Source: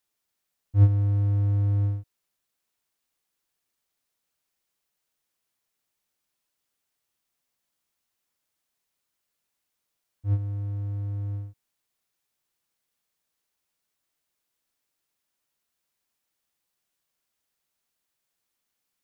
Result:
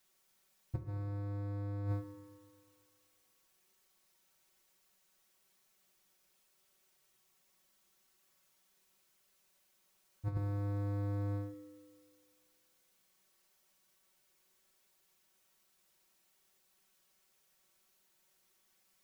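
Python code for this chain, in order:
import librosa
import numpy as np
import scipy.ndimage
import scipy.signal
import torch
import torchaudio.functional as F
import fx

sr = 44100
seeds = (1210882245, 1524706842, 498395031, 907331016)

y = fx.over_compress(x, sr, threshold_db=-26.0, ratio=-0.5)
y = y + 0.83 * np.pad(y, (int(5.3 * sr / 1000.0), 0))[:len(y)]
y = fx.rev_fdn(y, sr, rt60_s=2.2, lf_ratio=0.75, hf_ratio=0.8, size_ms=16.0, drr_db=5.5)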